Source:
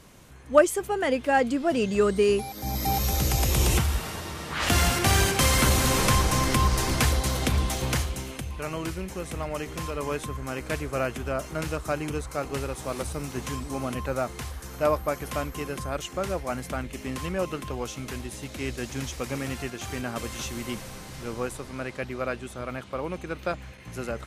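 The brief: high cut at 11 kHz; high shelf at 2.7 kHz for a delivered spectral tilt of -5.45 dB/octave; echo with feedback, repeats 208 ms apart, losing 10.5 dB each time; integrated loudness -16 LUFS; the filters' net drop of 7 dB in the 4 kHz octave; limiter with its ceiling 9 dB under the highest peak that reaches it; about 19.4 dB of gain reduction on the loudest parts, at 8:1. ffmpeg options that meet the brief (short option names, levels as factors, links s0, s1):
-af "lowpass=11000,highshelf=f=2700:g=-4,equalizer=f=4000:t=o:g=-6,acompressor=threshold=0.0251:ratio=8,alimiter=level_in=1.88:limit=0.0631:level=0:latency=1,volume=0.531,aecho=1:1:208|416|624:0.299|0.0896|0.0269,volume=15"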